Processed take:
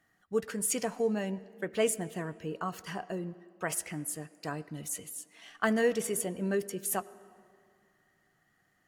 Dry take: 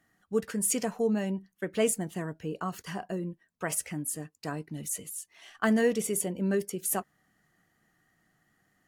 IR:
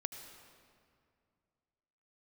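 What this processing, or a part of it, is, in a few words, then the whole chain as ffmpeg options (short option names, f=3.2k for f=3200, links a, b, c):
filtered reverb send: -filter_complex "[0:a]asplit=2[a][b];[b]highpass=f=210:w=0.5412,highpass=f=210:w=1.3066,lowpass=6.5k[c];[1:a]atrim=start_sample=2205[d];[c][d]afir=irnorm=-1:irlink=0,volume=-8.5dB[e];[a][e]amix=inputs=2:normalize=0,volume=-2.5dB"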